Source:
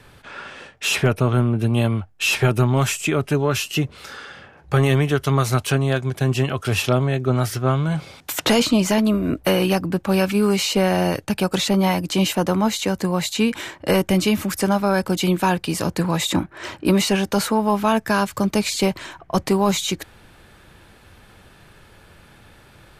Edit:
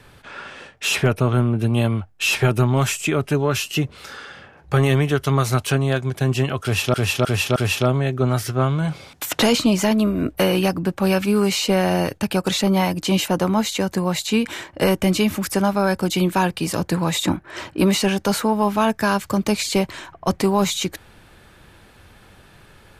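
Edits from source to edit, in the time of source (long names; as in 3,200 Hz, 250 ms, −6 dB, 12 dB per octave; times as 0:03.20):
0:06.63–0:06.94: repeat, 4 plays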